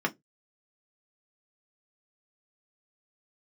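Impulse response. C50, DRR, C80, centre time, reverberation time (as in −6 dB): 27.5 dB, 1.0 dB, 36.0 dB, 5 ms, 0.15 s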